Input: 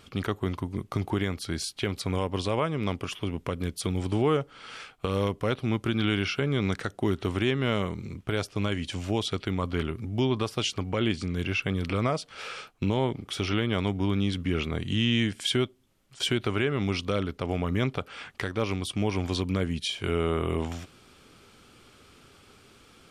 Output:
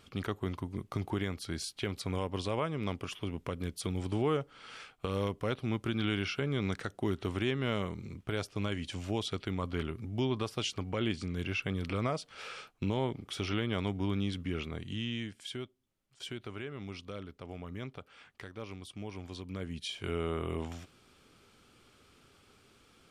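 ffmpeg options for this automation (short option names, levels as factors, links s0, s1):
-af "volume=1.19,afade=t=out:st=14.13:d=1.25:silence=0.354813,afade=t=in:st=19.43:d=0.53:silence=0.421697"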